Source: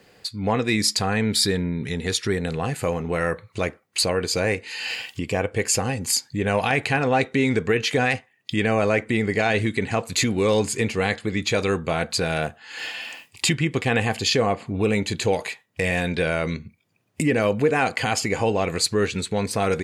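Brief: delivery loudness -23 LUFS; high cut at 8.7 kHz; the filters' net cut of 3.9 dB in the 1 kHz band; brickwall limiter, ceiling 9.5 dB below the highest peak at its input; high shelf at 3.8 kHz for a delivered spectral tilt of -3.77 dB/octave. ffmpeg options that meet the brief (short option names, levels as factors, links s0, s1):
-af "lowpass=8700,equalizer=f=1000:t=o:g=-6.5,highshelf=f=3800:g=9,volume=1.19,alimiter=limit=0.282:level=0:latency=1"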